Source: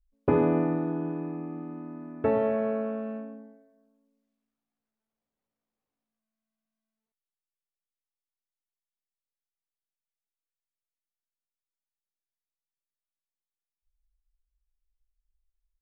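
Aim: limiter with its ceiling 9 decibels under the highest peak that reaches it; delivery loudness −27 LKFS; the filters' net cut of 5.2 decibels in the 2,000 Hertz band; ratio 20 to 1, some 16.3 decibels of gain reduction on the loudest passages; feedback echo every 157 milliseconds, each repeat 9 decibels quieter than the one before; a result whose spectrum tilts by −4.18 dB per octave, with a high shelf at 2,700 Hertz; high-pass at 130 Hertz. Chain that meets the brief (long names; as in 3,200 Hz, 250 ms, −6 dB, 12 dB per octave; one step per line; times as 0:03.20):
high-pass filter 130 Hz
parametric band 2,000 Hz −5.5 dB
high-shelf EQ 2,700 Hz −3.5 dB
downward compressor 20 to 1, threshold −35 dBFS
brickwall limiter −33 dBFS
repeating echo 157 ms, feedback 35%, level −9 dB
level +14 dB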